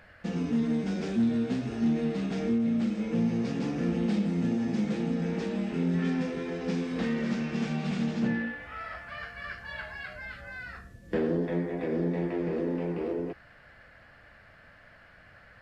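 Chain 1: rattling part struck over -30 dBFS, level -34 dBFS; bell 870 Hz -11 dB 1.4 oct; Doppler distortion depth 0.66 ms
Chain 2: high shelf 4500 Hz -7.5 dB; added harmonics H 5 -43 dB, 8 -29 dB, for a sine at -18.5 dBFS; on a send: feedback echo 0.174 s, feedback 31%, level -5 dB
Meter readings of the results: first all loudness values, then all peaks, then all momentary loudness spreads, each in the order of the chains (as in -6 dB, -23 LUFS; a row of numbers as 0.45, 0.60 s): -32.0, -29.0 LUFS; -19.0, -15.0 dBFS; 14, 12 LU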